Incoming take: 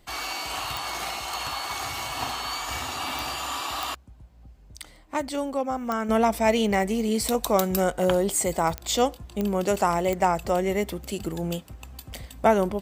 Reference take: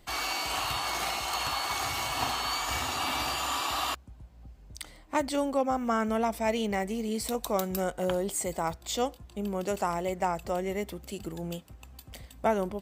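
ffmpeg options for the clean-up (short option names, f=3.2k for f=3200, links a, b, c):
-af "adeclick=t=4,asetnsamples=n=441:p=0,asendcmd='6.09 volume volume -7dB',volume=0dB"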